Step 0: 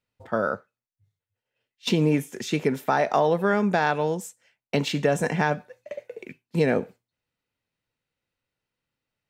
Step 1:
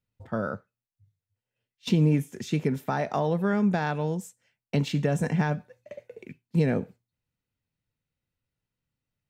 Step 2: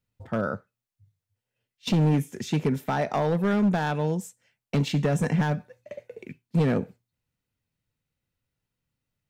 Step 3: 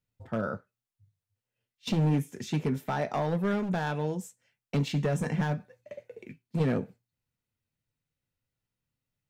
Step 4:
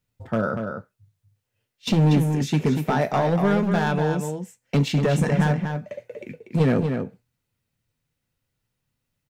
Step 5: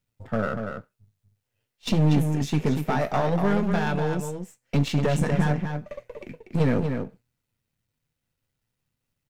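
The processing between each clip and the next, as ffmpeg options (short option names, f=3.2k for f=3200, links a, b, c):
-af "bass=f=250:g=12,treble=f=4k:g=1,volume=-7dB"
-af "asoftclip=type=hard:threshold=-20dB,volume=2.5dB"
-af "flanger=delay=6.8:depth=2.4:regen=-64:speed=0.86:shape=sinusoidal"
-filter_complex "[0:a]asplit=2[a][b];[b]adelay=239.1,volume=-6dB,highshelf=f=4k:g=-5.38[c];[a][c]amix=inputs=2:normalize=0,volume=7.5dB"
-af "aeval=exprs='if(lt(val(0),0),0.447*val(0),val(0))':c=same"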